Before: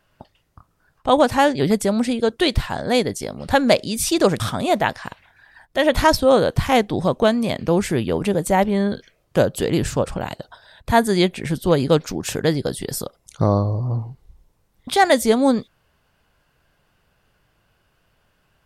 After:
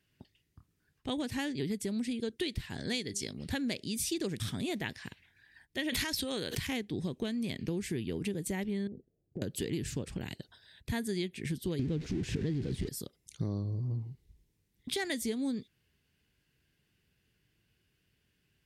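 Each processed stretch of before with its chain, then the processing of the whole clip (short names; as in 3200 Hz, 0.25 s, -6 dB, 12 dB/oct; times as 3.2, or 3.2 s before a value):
2.8–3.33 LPF 7500 Hz + high shelf 2500 Hz +10.5 dB + de-hum 200.2 Hz, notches 2
5.89–6.67 tilt shelf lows -5.5 dB, about 650 Hz + backwards sustainer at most 52 dB/s
8.87–9.42 elliptic low-pass 790 Hz + compressor, threshold -26 dBFS
11.79–12.89 zero-crossing step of -17 dBFS + LPF 7100 Hz + tilt -3 dB/oct
whole clip: HPF 54 Hz; band shelf 860 Hz -14.5 dB; compressor, threshold -23 dBFS; gain -8 dB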